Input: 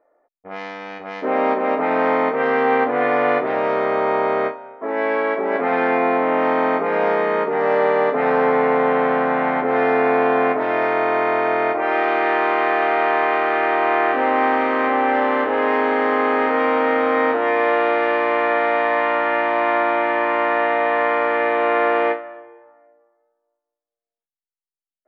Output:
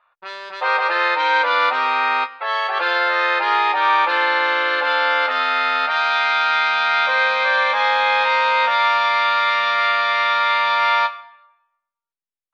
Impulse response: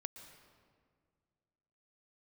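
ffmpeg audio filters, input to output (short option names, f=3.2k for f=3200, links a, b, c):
-filter_complex "[0:a]lowpass=1.7k,asetrate=88200,aresample=44100,asplit=2[a][b];[b]adelay=12,volume=-8dB[c];[a][c]amix=inputs=2:normalize=0"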